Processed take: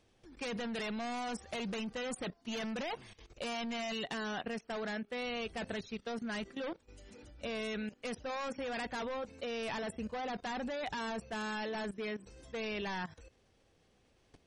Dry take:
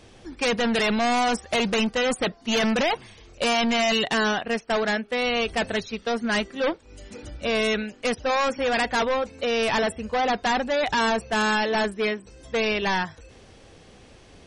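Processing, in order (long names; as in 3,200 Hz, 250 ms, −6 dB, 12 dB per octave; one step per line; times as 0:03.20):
dynamic equaliser 200 Hz, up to +3 dB, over −37 dBFS, Q 0.96
output level in coarse steps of 16 dB
level −6 dB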